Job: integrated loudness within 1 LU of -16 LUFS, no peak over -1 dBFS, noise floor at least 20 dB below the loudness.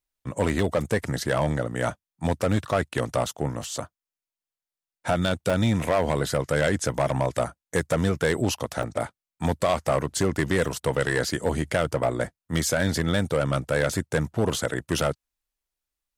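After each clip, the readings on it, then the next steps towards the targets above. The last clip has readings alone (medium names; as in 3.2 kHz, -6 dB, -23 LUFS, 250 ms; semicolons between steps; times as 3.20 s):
clipped samples 1.5%; clipping level -15.5 dBFS; dropouts 3; longest dropout 1.6 ms; loudness -26.0 LUFS; peak level -15.5 dBFS; loudness target -16.0 LUFS
-> clip repair -15.5 dBFS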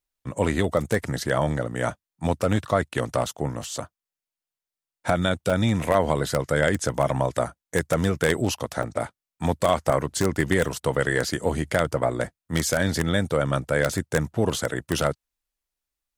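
clipped samples 0.0%; dropouts 3; longest dropout 1.6 ms
-> interpolate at 1.29/5.50/8.83 s, 1.6 ms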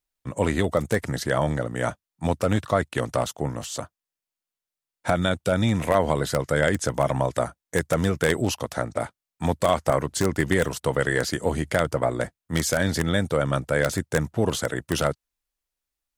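dropouts 0; loudness -25.0 LUFS; peak level -6.5 dBFS; loudness target -16.0 LUFS
-> trim +9 dB; peak limiter -1 dBFS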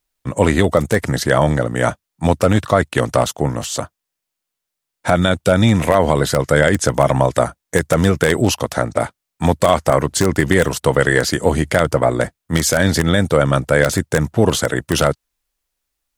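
loudness -16.5 LUFS; peak level -1.0 dBFS; noise floor -81 dBFS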